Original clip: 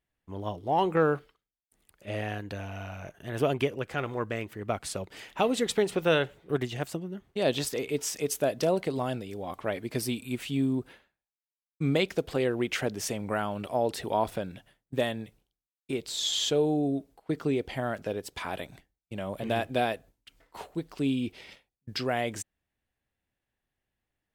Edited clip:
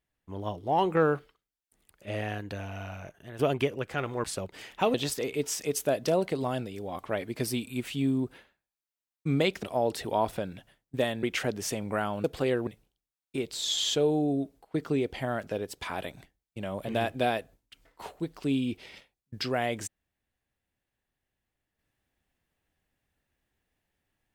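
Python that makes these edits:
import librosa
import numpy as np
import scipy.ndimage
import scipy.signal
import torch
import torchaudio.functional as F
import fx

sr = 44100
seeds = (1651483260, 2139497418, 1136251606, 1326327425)

y = fx.edit(x, sr, fx.fade_out_to(start_s=2.94, length_s=0.45, floor_db=-11.0),
    fx.cut(start_s=4.24, length_s=0.58),
    fx.cut(start_s=5.52, length_s=1.97),
    fx.swap(start_s=12.18, length_s=0.43, other_s=13.62, other_length_s=1.6), tone=tone)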